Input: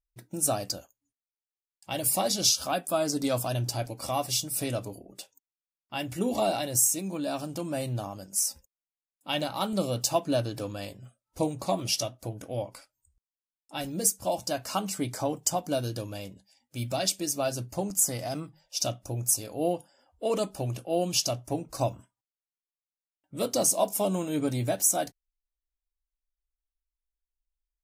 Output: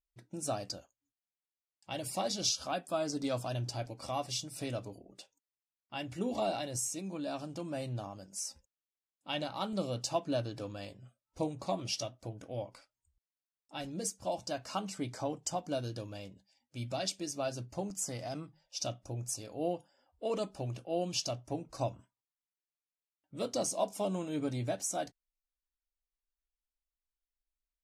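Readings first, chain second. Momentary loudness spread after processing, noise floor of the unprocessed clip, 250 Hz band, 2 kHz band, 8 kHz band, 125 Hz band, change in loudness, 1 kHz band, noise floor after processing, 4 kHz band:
11 LU, under -85 dBFS, -6.5 dB, -6.5 dB, -11.5 dB, -6.5 dB, -8.5 dB, -6.5 dB, under -85 dBFS, -7.5 dB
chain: LPF 6400 Hz 12 dB/oct; gain -6.5 dB

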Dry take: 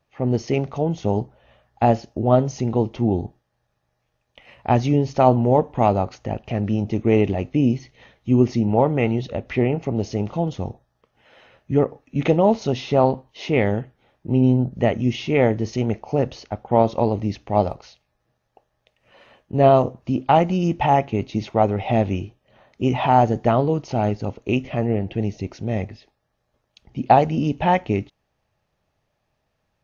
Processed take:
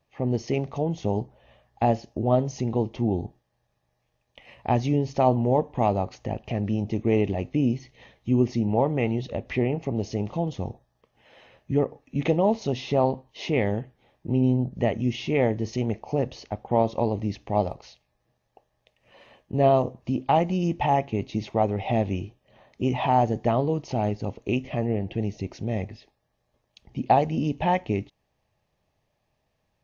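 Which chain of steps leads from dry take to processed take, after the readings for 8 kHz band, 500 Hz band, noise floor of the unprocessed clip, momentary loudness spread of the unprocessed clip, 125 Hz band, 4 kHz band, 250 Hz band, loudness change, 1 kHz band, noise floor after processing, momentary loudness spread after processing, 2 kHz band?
n/a, -5.0 dB, -73 dBFS, 10 LU, -4.5 dB, -4.0 dB, -4.5 dB, -5.0 dB, -5.5 dB, -75 dBFS, 9 LU, -5.0 dB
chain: bell 1400 Hz -9 dB 0.26 oct; in parallel at -1.5 dB: compressor, threshold -27 dBFS, peak gain reduction 17 dB; on the sum: gain -6.5 dB

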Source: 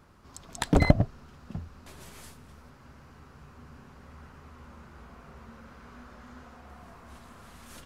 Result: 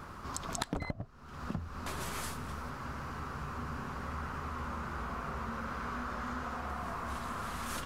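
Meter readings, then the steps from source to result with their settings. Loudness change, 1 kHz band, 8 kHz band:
-12.5 dB, +4.0 dB, +2.5 dB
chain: bell 1200 Hz +7 dB 0.9 oct; compressor 12:1, threshold -43 dBFS, peak gain reduction 32 dB; gain +9.5 dB

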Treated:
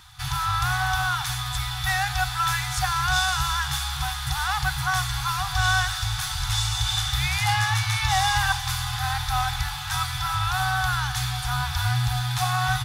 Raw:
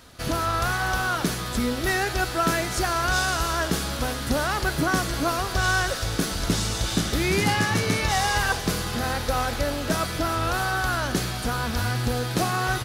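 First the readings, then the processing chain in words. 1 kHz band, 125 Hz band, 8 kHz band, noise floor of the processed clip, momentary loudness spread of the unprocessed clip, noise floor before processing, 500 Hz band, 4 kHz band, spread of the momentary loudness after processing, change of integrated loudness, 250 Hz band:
+1.0 dB, +2.0 dB, 0.0 dB, -31 dBFS, 4 LU, -31 dBFS, under -15 dB, +3.5 dB, 5 LU, 0.0 dB, under -10 dB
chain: de-hum 46.17 Hz, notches 10; FFT band-reject 140–730 Hz; small resonant body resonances 220/330/3500 Hz, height 15 dB, ringing for 45 ms

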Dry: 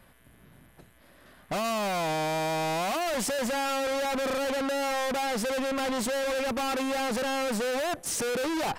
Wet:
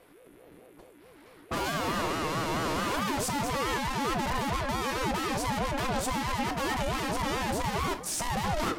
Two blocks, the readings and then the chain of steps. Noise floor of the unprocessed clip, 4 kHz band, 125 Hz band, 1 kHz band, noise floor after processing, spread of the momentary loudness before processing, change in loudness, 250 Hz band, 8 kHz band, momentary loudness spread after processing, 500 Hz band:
-58 dBFS, -1.0 dB, +7.0 dB, +0.5 dB, -55 dBFS, 1 LU, -1.5 dB, -1.0 dB, -1.5 dB, 1 LU, -5.5 dB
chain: shoebox room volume 62 m³, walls mixed, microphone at 0.33 m; ring modulator with a swept carrier 400 Hz, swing 30%, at 4.6 Hz; gain +1 dB

